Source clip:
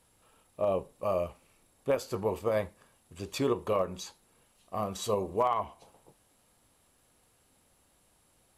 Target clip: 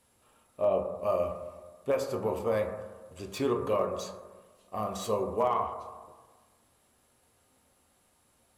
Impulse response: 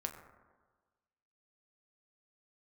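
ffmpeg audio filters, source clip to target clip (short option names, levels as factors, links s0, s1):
-filter_complex "[0:a]lowshelf=f=63:g=-7.5,acrossover=split=1600[s0][s1];[s1]volume=56.2,asoftclip=hard,volume=0.0178[s2];[s0][s2]amix=inputs=2:normalize=0[s3];[1:a]atrim=start_sample=2205[s4];[s3][s4]afir=irnorm=-1:irlink=0,asettb=1/sr,asplit=3[s5][s6][s7];[s5]atrim=end=0.674[s8];[s6]atrim=start=0.67:end=1.07,asetpts=PTS-STARTPTS,afade=t=in:d=0.004:c=qsin,afade=t=out:st=0.396:d=0.004:c=qsin,adynamicequalizer=threshold=0.00251:dfrequency=4300:dqfactor=0.7:tfrequency=4300:tqfactor=0.7:attack=5:release=100:ratio=0.375:range=2.5:mode=cutabove:tftype=highshelf[s9];[s7]atrim=start=1.066[s10];[s8][s9]acrossfade=d=0.004:c1=hsin:c2=qsin[s11];[s11][s10]acrossfade=d=0.004:c1=qsin:c2=hsin,volume=1.12"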